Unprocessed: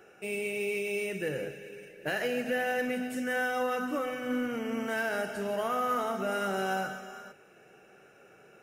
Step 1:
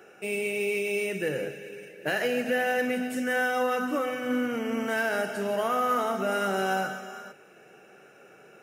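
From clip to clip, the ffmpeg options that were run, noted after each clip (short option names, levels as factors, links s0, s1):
-af "highpass=130,volume=1.58"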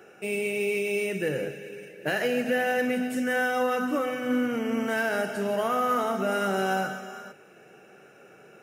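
-af "lowshelf=f=260:g=4.5"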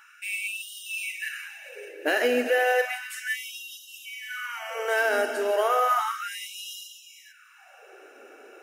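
-af "afftfilt=real='re*gte(b*sr/1024,230*pow(2800/230,0.5+0.5*sin(2*PI*0.33*pts/sr)))':imag='im*gte(b*sr/1024,230*pow(2800/230,0.5+0.5*sin(2*PI*0.33*pts/sr)))':win_size=1024:overlap=0.75,volume=1.5"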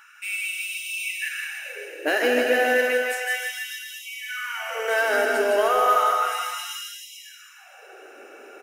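-filter_complex "[0:a]asplit=2[s0][s1];[s1]asoftclip=type=tanh:threshold=0.0668,volume=0.335[s2];[s0][s2]amix=inputs=2:normalize=0,aecho=1:1:160|304|433.6|550.2|655.2:0.631|0.398|0.251|0.158|0.1"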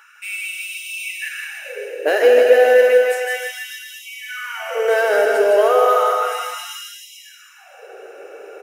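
-filter_complex "[0:a]asplit=2[s0][s1];[s1]asoftclip=type=tanh:threshold=0.112,volume=0.316[s2];[s0][s2]amix=inputs=2:normalize=0,highpass=f=470:t=q:w=3.6,volume=0.891"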